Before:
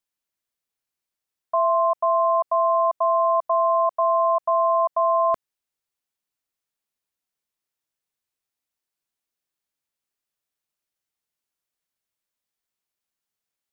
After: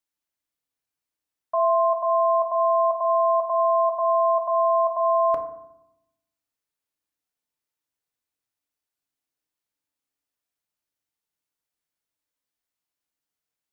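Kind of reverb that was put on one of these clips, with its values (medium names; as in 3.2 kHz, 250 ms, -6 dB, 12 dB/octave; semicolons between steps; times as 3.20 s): FDN reverb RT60 0.83 s, low-frequency decay 1.45×, high-frequency decay 0.35×, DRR 4.5 dB; trim -2.5 dB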